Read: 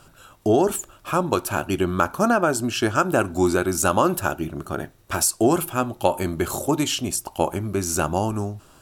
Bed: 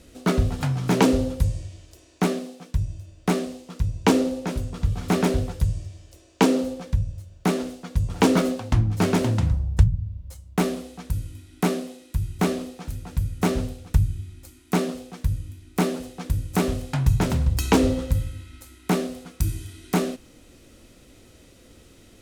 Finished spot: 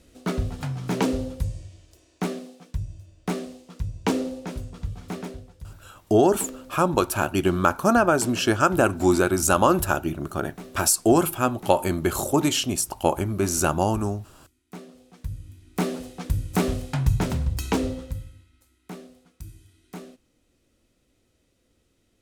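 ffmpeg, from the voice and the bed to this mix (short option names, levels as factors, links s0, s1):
-filter_complex "[0:a]adelay=5650,volume=1.06[s0];[1:a]volume=4.22,afade=t=out:st=4.56:d=0.87:silence=0.223872,afade=t=in:st=14.91:d=1.28:silence=0.125893,afade=t=out:st=16.82:d=1.7:silence=0.149624[s1];[s0][s1]amix=inputs=2:normalize=0"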